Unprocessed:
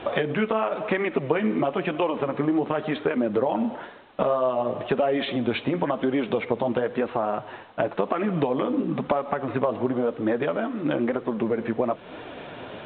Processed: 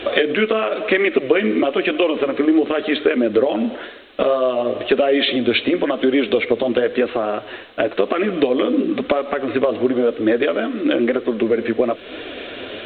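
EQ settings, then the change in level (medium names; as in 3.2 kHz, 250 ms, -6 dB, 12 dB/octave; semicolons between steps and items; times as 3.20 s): peaking EQ 890 Hz +12.5 dB 0.31 oct; treble shelf 2.1 kHz +8 dB; static phaser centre 370 Hz, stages 4; +8.5 dB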